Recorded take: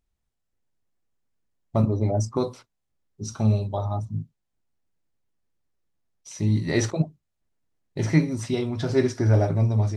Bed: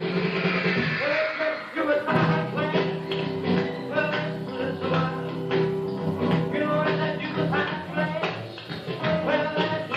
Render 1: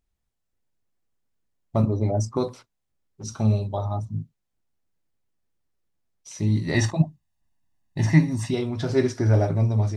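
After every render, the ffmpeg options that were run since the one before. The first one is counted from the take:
-filter_complex "[0:a]asettb=1/sr,asplit=3[s0][s1][s2];[s0]atrim=end=2.484[s3];[s1]atrim=start=2.48:end=3.24,asetpts=PTS-STARTPTS,afade=t=in:d=0.004:c=qsin,afade=t=out:st=0.756:d=0.004:c=qsin,asoftclip=type=hard:threshold=0.0168[s4];[s2]atrim=start=3.236[s5];[s3][s4]acrossfade=d=0.004:c1=hsin:c2=qsin[s6];[s6][s5]acrossfade=d=0.004:c1=qsin:c2=hsin,asettb=1/sr,asplit=3[s7][s8][s9];[s7]atrim=end=6.744[s10];[s8]atrim=start=6.74:end=8.51,asetpts=PTS-STARTPTS,afade=t=in:d=0.004:c=qsin,afade=t=out:st=1.766:d=0.004:c=qsin,aecho=1:1:1.1:0.78,atrim=end_sample=78057[s11];[s9]atrim=start=8.506[s12];[s10][s11]acrossfade=d=0.004:c1=hsin:c2=qsin[s13];[s13][s12]acrossfade=d=0.004:c1=qsin:c2=hsin"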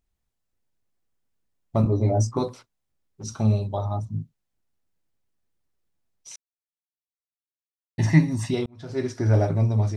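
-filter_complex "[0:a]asettb=1/sr,asplit=3[s0][s1][s2];[s0]atrim=end=1.844[s3];[s1]atrim=start=1.84:end=2.42,asetpts=PTS-STARTPTS,afade=t=in:d=0.004:c=qsin,afade=t=out:st=0.576:d=0.004:c=qsin,asplit=2[s4][s5];[s5]adelay=17,volume=0.708[s6];[s4][s6]amix=inputs=2:normalize=0,atrim=end_sample=25578[s7];[s2]atrim=start=2.416[s8];[s3][s7]acrossfade=d=0.004:c1=hsin:c2=qsin[s9];[s9][s8]acrossfade=d=0.004:c1=qsin:c2=hsin,asplit=4[s10][s11][s12][s13];[s10]atrim=end=6.36,asetpts=PTS-STARTPTS,afade=t=out:st=6.356:d=0.004:c=hsin[s14];[s11]atrim=start=6.36:end=7.98,asetpts=PTS-STARTPTS,volume=0[s15];[s12]atrim=start=7.98:end=8.66,asetpts=PTS-STARTPTS,afade=t=in:d=0.004:c=hsin,afade=t=out:st=0.676:d=0.004:c=hsin[s16];[s13]atrim=start=8.66,asetpts=PTS-STARTPTS,afade=t=in:d=0.7[s17];[s14][s15][s16][s17]concat=n=4:v=0:a=1"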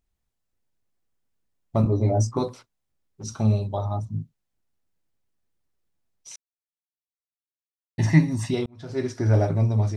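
-af anull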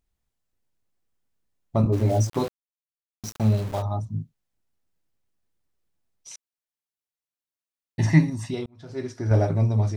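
-filter_complex "[0:a]asplit=3[s0][s1][s2];[s0]afade=t=out:st=1.92:d=0.02[s3];[s1]aeval=exprs='val(0)*gte(abs(val(0)),0.0211)':c=same,afade=t=in:st=1.92:d=0.02,afade=t=out:st=3.81:d=0.02[s4];[s2]afade=t=in:st=3.81:d=0.02[s5];[s3][s4][s5]amix=inputs=3:normalize=0,asplit=3[s6][s7][s8];[s6]atrim=end=8.302[s9];[s7]atrim=start=8.298:end=9.312,asetpts=PTS-STARTPTS,volume=0.596[s10];[s8]atrim=start=9.308[s11];[s9][s10]acrossfade=d=0.004:c1=hsin:c2=hsin[s12];[s12][s11]acrossfade=d=0.004:c1=hsin:c2=hsin"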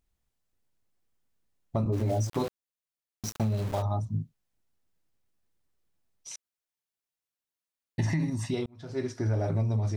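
-af "alimiter=limit=0.158:level=0:latency=1:release=50,acompressor=threshold=0.0631:ratio=6"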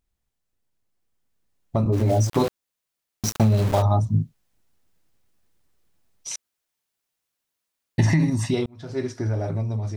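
-af "dynaudnorm=f=330:g=11:m=3.16"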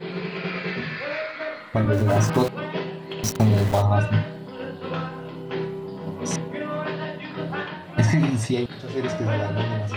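-filter_complex "[1:a]volume=0.562[s0];[0:a][s0]amix=inputs=2:normalize=0"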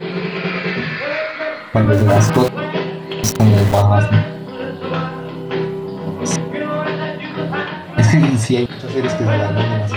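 -af "volume=2.51,alimiter=limit=0.794:level=0:latency=1"

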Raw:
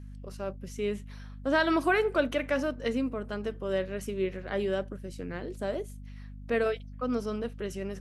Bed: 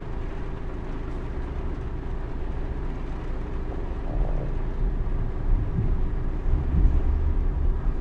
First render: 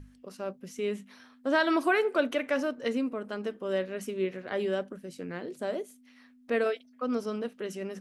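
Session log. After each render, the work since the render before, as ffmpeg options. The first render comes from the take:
-af "bandreject=f=50:t=h:w=6,bandreject=f=100:t=h:w=6,bandreject=f=150:t=h:w=6,bandreject=f=200:t=h:w=6"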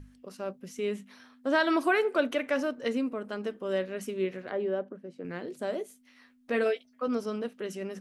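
-filter_complex "[0:a]asettb=1/sr,asplit=3[s0][s1][s2];[s0]atrim=end=4.514[s3];[s1]atrim=start=4.51:end=5.25,asetpts=PTS-STARTPTS,afade=t=in:d=0.004:c=qsin,afade=t=out:st=0.736:d=0.004:c=qsin,bandpass=f=470:t=q:w=0.55[s4];[s2]atrim=start=5.246[s5];[s3][s4]acrossfade=d=0.004:c1=hsin:c2=qsin[s6];[s6][s5]acrossfade=d=0.004:c1=qsin:c2=hsin,asettb=1/sr,asplit=3[s7][s8][s9];[s7]atrim=end=5.784[s10];[s8]atrim=start=5.78:end=7.08,asetpts=PTS-STARTPTS,afade=t=in:d=0.004:c=qsin,afade=t=out:st=1.296:d=0.004:c=qsin,asplit=2[s11][s12];[s12]adelay=14,volume=0.447[s13];[s11][s13]amix=inputs=2:normalize=0,atrim=end_sample=57330[s14];[s9]atrim=start=7.076[s15];[s10][s14]acrossfade=d=0.004:c1=hsin:c2=qsin[s16];[s16][s15]acrossfade=d=0.004:c1=qsin:c2=hsin"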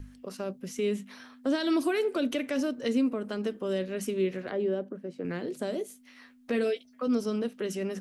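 -filter_complex "[0:a]asplit=2[s0][s1];[s1]alimiter=limit=0.0794:level=0:latency=1:release=23,volume=0.841[s2];[s0][s2]amix=inputs=2:normalize=0,acrossover=split=410|3000[s3][s4][s5];[s4]acompressor=threshold=0.0141:ratio=6[s6];[s3][s6][s5]amix=inputs=3:normalize=0"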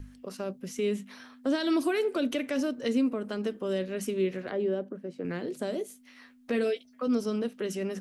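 -af anull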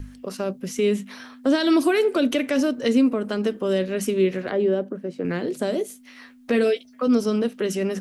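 -af "volume=2.51"

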